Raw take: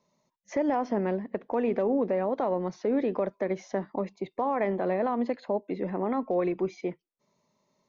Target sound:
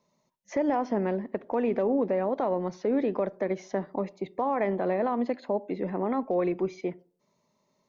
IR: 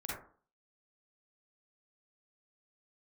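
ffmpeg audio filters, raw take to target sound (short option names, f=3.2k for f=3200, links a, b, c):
-filter_complex "[0:a]asplit=2[a][b];[1:a]atrim=start_sample=2205,lowpass=f=1k:p=1[c];[b][c]afir=irnorm=-1:irlink=0,volume=-20dB[d];[a][d]amix=inputs=2:normalize=0"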